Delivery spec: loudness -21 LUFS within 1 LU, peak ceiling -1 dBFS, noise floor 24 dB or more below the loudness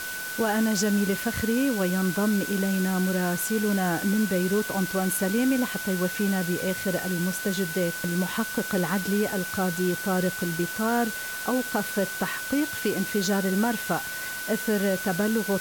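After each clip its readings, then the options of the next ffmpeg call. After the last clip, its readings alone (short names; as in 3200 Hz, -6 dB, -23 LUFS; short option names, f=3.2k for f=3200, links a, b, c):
steady tone 1500 Hz; tone level -33 dBFS; noise floor -34 dBFS; noise floor target -50 dBFS; loudness -26.0 LUFS; peak -13.0 dBFS; loudness target -21.0 LUFS
-> -af "bandreject=f=1.5k:w=30"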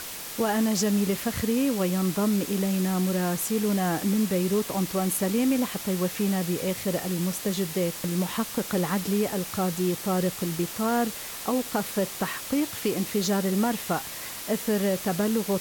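steady tone none; noise floor -37 dBFS; noise floor target -51 dBFS
-> -af "afftdn=nr=14:nf=-37"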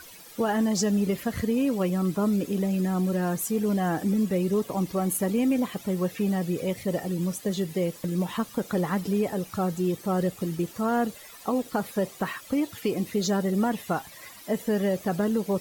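noise floor -47 dBFS; noise floor target -51 dBFS
-> -af "afftdn=nr=6:nf=-47"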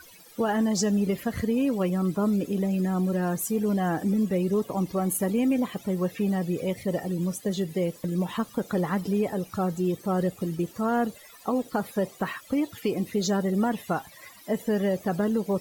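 noise floor -50 dBFS; noise floor target -51 dBFS
-> -af "afftdn=nr=6:nf=-50"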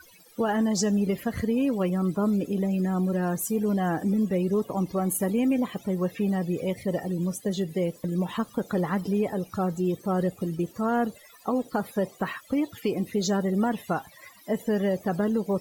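noise floor -53 dBFS; loudness -27.5 LUFS; peak -15.0 dBFS; loudness target -21.0 LUFS
-> -af "volume=6.5dB"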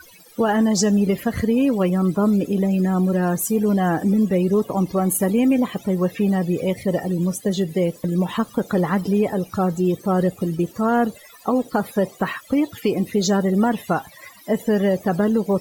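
loudness -21.0 LUFS; peak -8.5 dBFS; noise floor -47 dBFS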